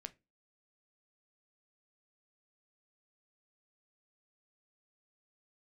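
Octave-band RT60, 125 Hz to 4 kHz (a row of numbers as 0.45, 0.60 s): 0.30, 0.35, 0.30, 0.20, 0.20, 0.20 s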